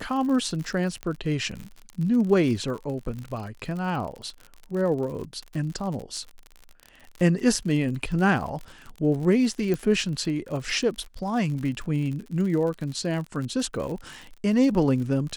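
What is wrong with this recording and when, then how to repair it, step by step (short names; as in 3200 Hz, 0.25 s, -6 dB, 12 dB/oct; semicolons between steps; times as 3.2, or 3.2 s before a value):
crackle 58/s -32 dBFS
1.03 pop -18 dBFS
9.74 pop -16 dBFS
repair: de-click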